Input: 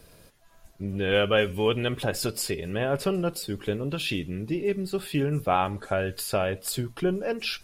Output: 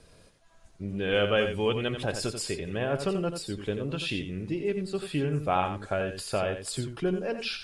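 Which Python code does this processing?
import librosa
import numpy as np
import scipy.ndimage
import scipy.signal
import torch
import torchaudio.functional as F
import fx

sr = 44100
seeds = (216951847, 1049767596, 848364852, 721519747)

y = scipy.signal.sosfilt(scipy.signal.butter(6, 9700.0, 'lowpass', fs=sr, output='sos'), x)
y = y + 10.0 ** (-8.5 / 20.0) * np.pad(y, (int(88 * sr / 1000.0), 0))[:len(y)]
y = y * 10.0 ** (-3.0 / 20.0)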